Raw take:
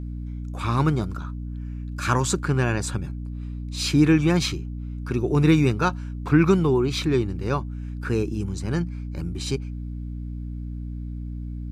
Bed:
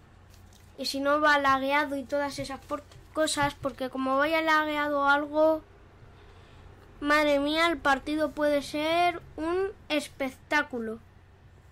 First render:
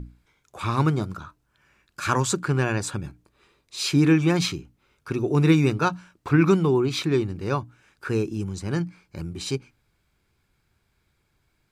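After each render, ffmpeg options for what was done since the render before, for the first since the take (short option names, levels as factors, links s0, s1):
-af "bandreject=f=60:t=h:w=6,bandreject=f=120:t=h:w=6,bandreject=f=180:t=h:w=6,bandreject=f=240:t=h:w=6,bandreject=f=300:t=h:w=6"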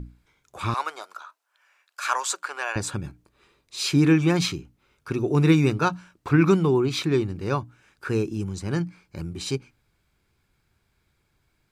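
-filter_complex "[0:a]asettb=1/sr,asplit=3[s0][s1][s2];[s0]atrim=end=0.744[s3];[s1]atrim=start=0.74:end=2.76,asetpts=PTS-STARTPTS,afade=t=in:d=0.004:c=qsin,afade=t=out:st=2.016:d=0.004:c=qsin,highpass=f=630:w=0.5412,highpass=f=630:w=1.3066[s4];[s2]atrim=start=2.756[s5];[s3][s4]acrossfade=d=0.004:c1=hsin:c2=qsin[s6];[s6][s5]acrossfade=d=0.004:c1=qsin:c2=hsin"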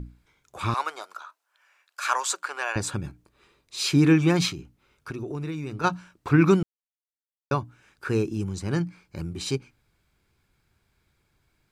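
-filter_complex "[0:a]asplit=3[s0][s1][s2];[s0]afade=t=out:st=4.49:d=0.02[s3];[s1]acompressor=threshold=0.0316:ratio=6:attack=3.2:release=140:knee=1:detection=peak,afade=t=in:st=4.49:d=0.02,afade=t=out:st=5.83:d=0.02[s4];[s2]afade=t=in:st=5.83:d=0.02[s5];[s3][s4][s5]amix=inputs=3:normalize=0,asplit=3[s6][s7][s8];[s6]atrim=end=6.63,asetpts=PTS-STARTPTS,afade=t=out:st=6.626:d=0.004:c=hsin[s9];[s7]atrim=start=6.63:end=7.51,asetpts=PTS-STARTPTS,volume=0[s10];[s8]atrim=start=7.51,asetpts=PTS-STARTPTS,afade=t=in:d=0.004:c=hsin[s11];[s9][s10][s11]concat=n=3:v=0:a=1"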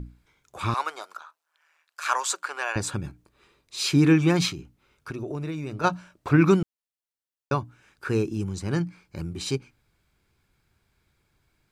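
-filter_complex "[0:a]asettb=1/sr,asplit=3[s0][s1][s2];[s0]atrim=end=1.174[s3];[s1]atrim=start=1.17:end=2.06,asetpts=PTS-STARTPTS,afade=t=in:d=0.004:c=qsin,afade=t=out:st=0.886:d=0.004:c=qsin,tremolo=f=160:d=0.71[s4];[s2]atrim=start=2.056[s5];[s3][s4]acrossfade=d=0.004:c1=hsin:c2=qsin[s6];[s6][s5]acrossfade=d=0.004:c1=qsin:c2=hsin,asettb=1/sr,asplit=3[s7][s8][s9];[s7]atrim=end=5.154[s10];[s8]atrim=start=5.15:end=6.37,asetpts=PTS-STARTPTS,afade=t=in:d=0.004:c=qsin,afade=t=out:st=1.216:d=0.004:c=qsin,equalizer=f=610:w=4.6:g=8.5[s11];[s9]atrim=start=6.366[s12];[s10][s11]acrossfade=d=0.004:c1=hsin:c2=qsin[s13];[s13][s12]acrossfade=d=0.004:c1=qsin:c2=hsin"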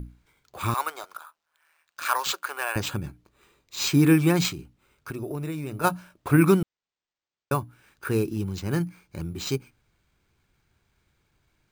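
-af "acrusher=samples=4:mix=1:aa=0.000001"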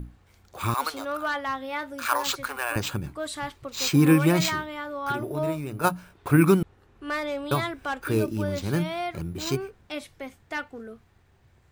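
-filter_complex "[1:a]volume=0.473[s0];[0:a][s0]amix=inputs=2:normalize=0"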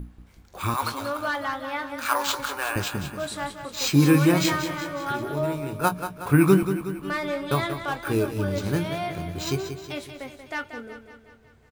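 -filter_complex "[0:a]asplit=2[s0][s1];[s1]adelay=21,volume=0.335[s2];[s0][s2]amix=inputs=2:normalize=0,asplit=2[s3][s4];[s4]aecho=0:1:184|368|552|736|920|1104|1288:0.335|0.188|0.105|0.0588|0.0329|0.0184|0.0103[s5];[s3][s5]amix=inputs=2:normalize=0"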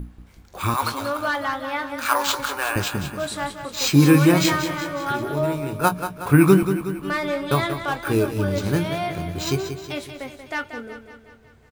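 -af "volume=1.5,alimiter=limit=0.708:level=0:latency=1"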